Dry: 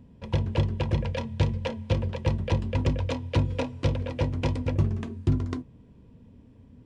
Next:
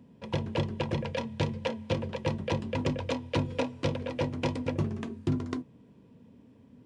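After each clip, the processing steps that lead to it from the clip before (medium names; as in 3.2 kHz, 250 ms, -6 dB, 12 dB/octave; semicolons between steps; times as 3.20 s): high-pass 160 Hz 12 dB/octave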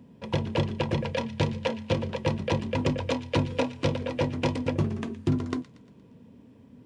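feedback echo behind a high-pass 117 ms, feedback 50%, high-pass 1.7 kHz, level -15 dB; trim +3.5 dB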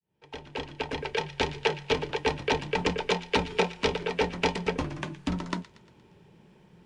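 fade-in on the opening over 1.55 s; frequency weighting A; frequency shift -74 Hz; trim +4.5 dB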